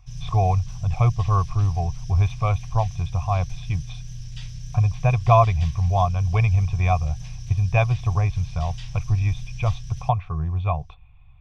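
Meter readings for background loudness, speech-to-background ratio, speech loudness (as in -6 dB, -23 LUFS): -37.5 LUFS, 14.5 dB, -23.0 LUFS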